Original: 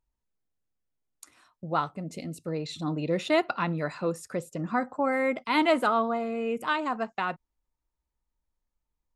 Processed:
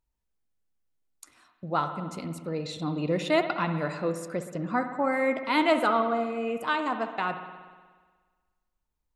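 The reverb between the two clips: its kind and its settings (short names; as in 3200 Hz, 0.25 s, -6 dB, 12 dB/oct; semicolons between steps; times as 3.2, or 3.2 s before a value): spring tank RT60 1.5 s, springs 60 ms, chirp 30 ms, DRR 8 dB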